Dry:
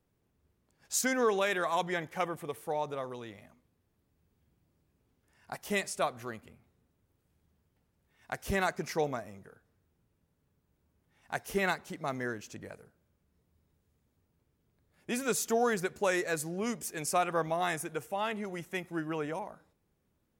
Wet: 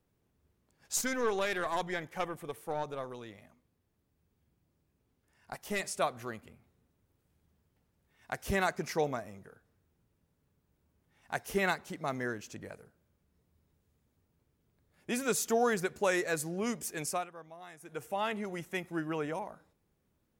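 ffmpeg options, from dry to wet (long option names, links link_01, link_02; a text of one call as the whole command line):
ffmpeg -i in.wav -filter_complex "[0:a]asplit=3[link_01][link_02][link_03];[link_01]afade=type=out:start_time=0.96:duration=0.02[link_04];[link_02]aeval=exprs='(tanh(14.1*val(0)+0.55)-tanh(0.55))/14.1':channel_layout=same,afade=type=in:start_time=0.96:duration=0.02,afade=type=out:start_time=5.79:duration=0.02[link_05];[link_03]afade=type=in:start_time=5.79:duration=0.02[link_06];[link_04][link_05][link_06]amix=inputs=3:normalize=0,asplit=3[link_07][link_08][link_09];[link_07]atrim=end=17.3,asetpts=PTS-STARTPTS,afade=type=out:start_time=17.01:duration=0.29:silence=0.11885[link_10];[link_08]atrim=start=17.3:end=17.8,asetpts=PTS-STARTPTS,volume=-18.5dB[link_11];[link_09]atrim=start=17.8,asetpts=PTS-STARTPTS,afade=type=in:duration=0.29:silence=0.11885[link_12];[link_10][link_11][link_12]concat=n=3:v=0:a=1" out.wav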